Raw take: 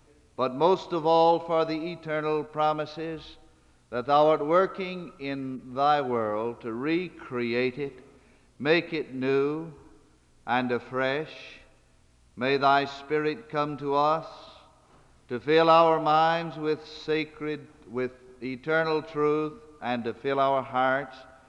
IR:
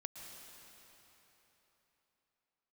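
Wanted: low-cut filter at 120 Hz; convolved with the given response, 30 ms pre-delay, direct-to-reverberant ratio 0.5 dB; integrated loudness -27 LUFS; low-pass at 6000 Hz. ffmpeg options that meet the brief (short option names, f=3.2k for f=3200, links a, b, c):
-filter_complex "[0:a]highpass=120,lowpass=6k,asplit=2[a][b];[1:a]atrim=start_sample=2205,adelay=30[c];[b][c]afir=irnorm=-1:irlink=0,volume=2.5dB[d];[a][d]amix=inputs=2:normalize=0,volume=-2.5dB"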